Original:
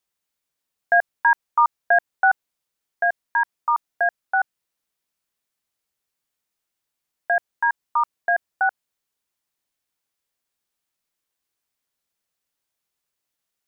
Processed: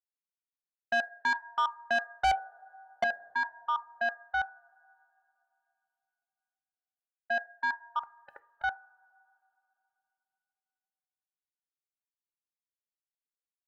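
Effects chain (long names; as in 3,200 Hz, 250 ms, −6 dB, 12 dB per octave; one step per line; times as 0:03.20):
0:02.24–0:03.04: flat-topped bell 520 Hz +14.5 dB 1.3 octaves
noise gate −24 dBFS, range −23 dB
0:07.99–0:08.64: gate on every frequency bin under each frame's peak −20 dB weak
coupled-rooms reverb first 0.34 s, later 3 s, from −22 dB, DRR 13 dB
soft clipping −14.5 dBFS, distortion −7 dB
level −7.5 dB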